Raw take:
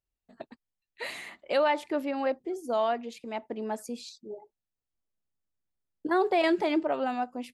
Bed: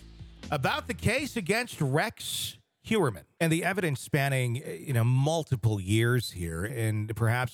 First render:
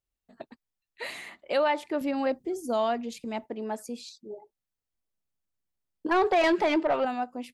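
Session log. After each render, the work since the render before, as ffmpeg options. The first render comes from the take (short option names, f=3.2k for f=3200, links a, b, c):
-filter_complex "[0:a]asettb=1/sr,asplit=3[a][b][c];[a]atrim=end=2.014[d];[b]atrim=start=2.01:end=3.46,asetpts=PTS-STARTPTS,afade=t=in:d=0.004:c=qsin,afade=t=out:st=1.446:d=0.004:c=qsin,bass=f=250:g=10,treble=f=4k:g=7[e];[c]atrim=start=3.456[f];[d][e]acrossfade=d=0.004:c1=hsin:c2=qsin[g];[g][f]acrossfade=d=0.004:c1=qsin:c2=hsin,asettb=1/sr,asplit=3[h][i][j];[h]atrim=end=6.064[k];[i]atrim=start=6.06:end=7.05,asetpts=PTS-STARTPTS,afade=t=in:d=0.004:c=qsin,afade=t=out:st=0.986:d=0.004:c=qsin,asplit=2[l][m];[m]highpass=f=720:p=1,volume=15dB,asoftclip=type=tanh:threshold=-15.5dB[n];[l][n]amix=inputs=2:normalize=0,lowpass=f=3.5k:p=1,volume=-6dB[o];[j]atrim=start=7.046[p];[k][o]acrossfade=d=0.004:c1=hsin:c2=qsin[q];[q][p]acrossfade=d=0.004:c1=qsin:c2=hsin"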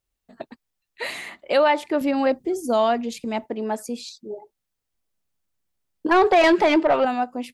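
-af "volume=7dB"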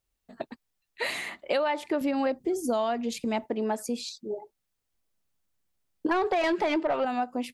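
-af "acompressor=threshold=-24dB:ratio=6"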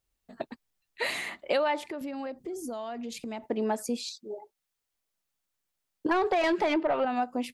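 -filter_complex "[0:a]asettb=1/sr,asplit=3[a][b][c];[a]atrim=end=1.814[d];[b]atrim=start=1.81:end=3.44,asetpts=PTS-STARTPTS,afade=t=in:d=0.004:c=qsin,afade=t=out:st=1.626:d=0.004:c=qsin,acompressor=threshold=-36dB:ratio=3:attack=3.2:release=140:knee=1:detection=peak[e];[c]atrim=start=3.436[f];[d][e]acrossfade=d=0.004:c1=hsin:c2=qsin[g];[g][f]acrossfade=d=0.004:c1=qsin:c2=hsin,asettb=1/sr,asplit=3[h][i][j];[h]atrim=end=3.974[k];[i]atrim=start=3.97:end=6.06,asetpts=PTS-STARTPTS,afade=t=in:d=0.004:c=qsin,afade=t=out:st=2.086:d=0.004:c=qsin,lowshelf=f=370:g=-11[l];[j]atrim=start=6.056[m];[k][l]acrossfade=d=0.004:c1=hsin:c2=qsin[n];[n][m]acrossfade=d=0.004:c1=qsin:c2=hsin,asplit=3[o][p][q];[o]afade=t=out:st=6.73:d=0.02[r];[p]lowpass=3.8k,afade=t=in:st=6.73:d=0.02,afade=t=out:st=7.15:d=0.02[s];[q]afade=t=in:st=7.15:d=0.02[t];[r][s][t]amix=inputs=3:normalize=0"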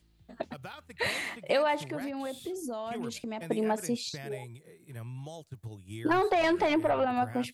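-filter_complex "[1:a]volume=-16.5dB[a];[0:a][a]amix=inputs=2:normalize=0"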